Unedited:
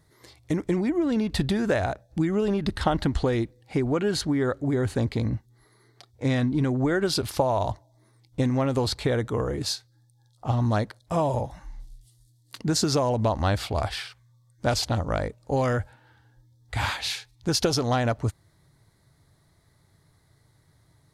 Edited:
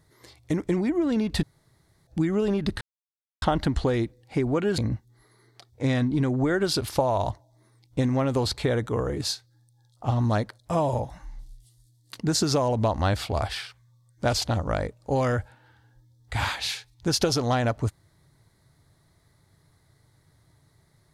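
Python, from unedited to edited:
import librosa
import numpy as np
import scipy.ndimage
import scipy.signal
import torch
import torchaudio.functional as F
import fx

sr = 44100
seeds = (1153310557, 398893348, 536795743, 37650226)

y = fx.edit(x, sr, fx.room_tone_fill(start_s=1.43, length_s=0.64),
    fx.insert_silence(at_s=2.81, length_s=0.61),
    fx.cut(start_s=4.17, length_s=1.02), tone=tone)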